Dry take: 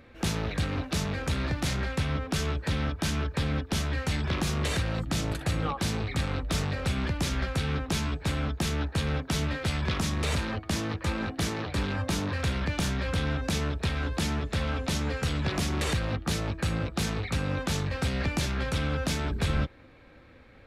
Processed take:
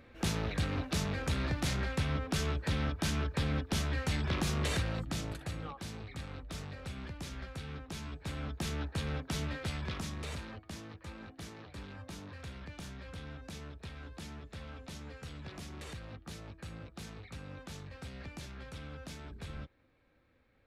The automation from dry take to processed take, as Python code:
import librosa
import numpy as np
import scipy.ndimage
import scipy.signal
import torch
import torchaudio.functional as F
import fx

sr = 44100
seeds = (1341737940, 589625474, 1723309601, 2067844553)

y = fx.gain(x, sr, db=fx.line((4.77, -4.0), (5.78, -14.0), (7.93, -14.0), (8.68, -7.5), (9.59, -7.5), (10.94, -17.0)))